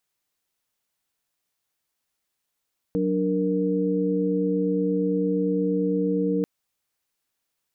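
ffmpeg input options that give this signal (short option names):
-f lavfi -i "aevalsrc='0.0562*(sin(2*PI*185*t)+sin(2*PI*293.66*t)+sin(2*PI*466.16*t))':d=3.49:s=44100"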